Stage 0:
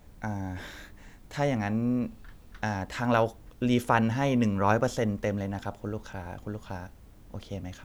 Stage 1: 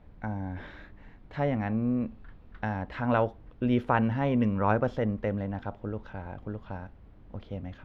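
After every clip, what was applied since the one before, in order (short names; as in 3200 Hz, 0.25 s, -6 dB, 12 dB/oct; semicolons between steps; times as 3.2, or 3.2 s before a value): air absorption 370 m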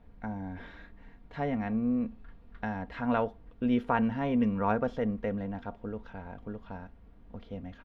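comb 4.3 ms, depth 47%; gain -3.5 dB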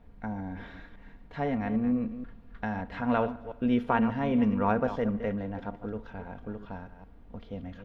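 reverse delay 0.16 s, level -11 dB; dark delay 74 ms, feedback 72%, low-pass 3600 Hz, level -22 dB; gain +1.5 dB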